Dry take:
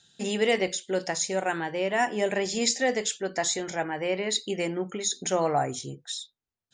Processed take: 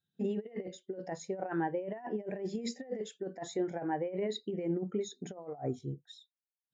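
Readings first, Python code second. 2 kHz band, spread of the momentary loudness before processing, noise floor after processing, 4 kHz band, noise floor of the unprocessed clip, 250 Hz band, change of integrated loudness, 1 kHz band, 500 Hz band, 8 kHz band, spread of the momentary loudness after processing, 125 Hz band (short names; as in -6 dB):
-18.0 dB, 8 LU, under -85 dBFS, -17.5 dB, under -85 dBFS, -4.5 dB, -10.0 dB, -11.5 dB, -9.0 dB, -21.5 dB, 9 LU, -3.5 dB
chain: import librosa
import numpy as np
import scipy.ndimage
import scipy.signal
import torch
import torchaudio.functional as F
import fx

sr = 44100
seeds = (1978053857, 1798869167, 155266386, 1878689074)

y = fx.lowpass(x, sr, hz=1300.0, slope=6)
y = fx.over_compress(y, sr, threshold_db=-31.0, ratio=-0.5)
y = fx.spectral_expand(y, sr, expansion=1.5)
y = y * 10.0 ** (-5.0 / 20.0)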